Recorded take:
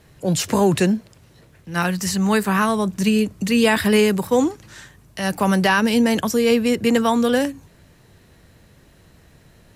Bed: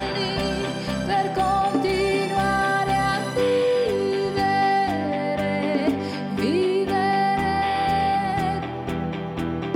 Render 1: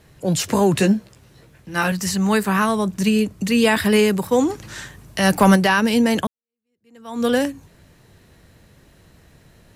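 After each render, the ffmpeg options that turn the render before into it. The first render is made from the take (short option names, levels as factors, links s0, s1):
-filter_complex "[0:a]asettb=1/sr,asplit=3[s0][s1][s2];[s0]atrim=end=0.754[s3];[s1]atrim=start=0.75:end=1.92,asetpts=PTS-STARTPTS,afade=t=in:d=0.004:c=qsin,afade=t=out:st=1.166:d=0.004:c=qsin,asplit=2[s4][s5];[s5]adelay=15,volume=0.562[s6];[s4][s6]amix=inputs=2:normalize=0,atrim=end_sample=51597[s7];[s2]atrim=start=1.916[s8];[s3][s7]acrossfade=d=0.004:c1=hsin:c2=qsin[s9];[s9][s8]acrossfade=d=0.004:c1=qsin:c2=hsin,asplit=3[s10][s11][s12];[s10]afade=t=out:st=4.48:d=0.02[s13];[s11]acontrast=72,afade=t=in:st=4.48:d=0.02,afade=t=out:st=5.55:d=0.02[s14];[s12]afade=t=in:st=5.55:d=0.02[s15];[s13][s14][s15]amix=inputs=3:normalize=0,asplit=2[s16][s17];[s16]atrim=end=6.27,asetpts=PTS-STARTPTS,afade=t=out:st=6.266:d=0.004:c=hsin[s18];[s17]atrim=start=6.27,asetpts=PTS-STARTPTS,afade=t=in:d=0.98:c=exp[s19];[s18][s19]concat=n=2:v=0:a=1"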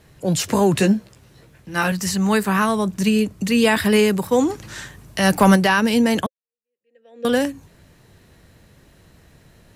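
-filter_complex "[0:a]asettb=1/sr,asplit=3[s0][s1][s2];[s0]atrim=end=6.264[s3];[s1]atrim=start=6.26:end=7.25,asetpts=PTS-STARTPTS,afade=t=in:d=0.004:c=qsin,afade=t=out:st=0.986:d=0.004:c=qsin,asplit=3[s4][s5][s6];[s4]bandpass=f=530:t=q:w=8,volume=1[s7];[s5]bandpass=f=1840:t=q:w=8,volume=0.501[s8];[s6]bandpass=f=2480:t=q:w=8,volume=0.355[s9];[s7][s8][s9]amix=inputs=3:normalize=0[s10];[s2]atrim=start=7.246[s11];[s3][s10]acrossfade=d=0.004:c1=hsin:c2=qsin[s12];[s12][s11]acrossfade=d=0.004:c1=qsin:c2=hsin"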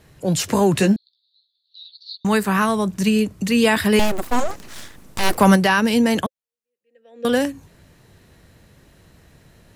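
-filter_complex "[0:a]asettb=1/sr,asplit=3[s0][s1][s2];[s0]atrim=end=0.964[s3];[s1]atrim=start=0.96:end=2.25,asetpts=PTS-STARTPTS,afade=t=in:d=0.004:c=qsin,afade=t=out:st=1.286:d=0.004:c=qsin,asuperpass=centerf=4000:order=8:qfactor=4[s4];[s2]atrim=start=2.246[s5];[s3][s4]acrossfade=d=0.004:c1=hsin:c2=qsin[s6];[s6][s5]acrossfade=d=0.004:c1=qsin:c2=hsin,asettb=1/sr,asplit=3[s7][s8][s9];[s7]atrim=end=3.994[s10];[s8]atrim=start=3.99:end=5.38,asetpts=PTS-STARTPTS,afade=t=in:d=0.004:c=qsin,afade=t=out:st=1.386:d=0.004:c=qsin,aeval=exprs='abs(val(0))':c=same[s11];[s9]atrim=start=5.376[s12];[s10][s11]acrossfade=d=0.004:c1=hsin:c2=qsin[s13];[s13][s12]acrossfade=d=0.004:c1=qsin:c2=hsin"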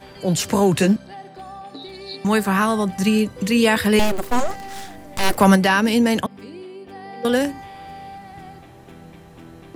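-filter_complex "[1:a]volume=0.158[s0];[0:a][s0]amix=inputs=2:normalize=0"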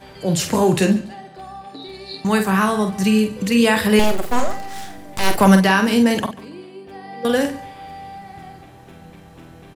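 -filter_complex "[0:a]asplit=2[s0][s1];[s1]adelay=47,volume=0.447[s2];[s0][s2]amix=inputs=2:normalize=0,aecho=1:1:142|284:0.112|0.0292"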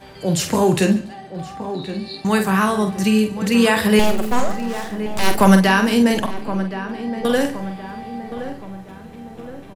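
-filter_complex "[0:a]asplit=2[s0][s1];[s1]adelay=1070,lowpass=f=1500:p=1,volume=0.282,asplit=2[s2][s3];[s3]adelay=1070,lowpass=f=1500:p=1,volume=0.5,asplit=2[s4][s5];[s5]adelay=1070,lowpass=f=1500:p=1,volume=0.5,asplit=2[s6][s7];[s7]adelay=1070,lowpass=f=1500:p=1,volume=0.5,asplit=2[s8][s9];[s9]adelay=1070,lowpass=f=1500:p=1,volume=0.5[s10];[s0][s2][s4][s6][s8][s10]amix=inputs=6:normalize=0"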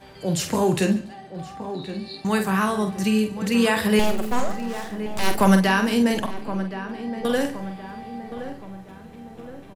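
-af "volume=0.596"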